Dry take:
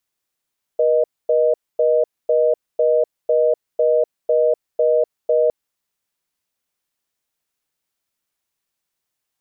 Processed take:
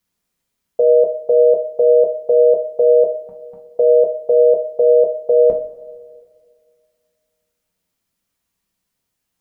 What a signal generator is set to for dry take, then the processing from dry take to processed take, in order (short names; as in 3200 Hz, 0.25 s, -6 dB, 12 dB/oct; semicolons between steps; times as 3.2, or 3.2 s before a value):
call progress tone reorder tone, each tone -15.5 dBFS 4.71 s
spectral repair 3.12–3.61, 320–750 Hz; low shelf 290 Hz +11 dB; two-slope reverb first 0.32 s, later 2.1 s, from -18 dB, DRR -0.5 dB